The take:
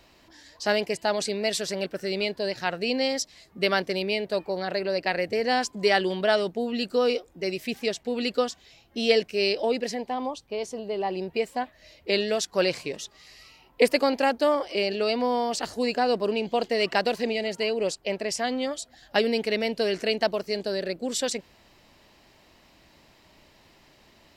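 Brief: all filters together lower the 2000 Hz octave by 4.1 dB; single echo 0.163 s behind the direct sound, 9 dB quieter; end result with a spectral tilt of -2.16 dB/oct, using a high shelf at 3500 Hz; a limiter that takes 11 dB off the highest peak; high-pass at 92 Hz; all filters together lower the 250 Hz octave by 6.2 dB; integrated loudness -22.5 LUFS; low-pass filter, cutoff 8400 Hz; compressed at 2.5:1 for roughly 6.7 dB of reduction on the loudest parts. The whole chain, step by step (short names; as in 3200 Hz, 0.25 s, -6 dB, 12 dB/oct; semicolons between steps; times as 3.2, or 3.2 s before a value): HPF 92 Hz; LPF 8400 Hz; bell 250 Hz -7.5 dB; bell 2000 Hz -8 dB; high shelf 3500 Hz +8 dB; compressor 2.5:1, threshold -27 dBFS; limiter -21.5 dBFS; echo 0.163 s -9 dB; gain +10 dB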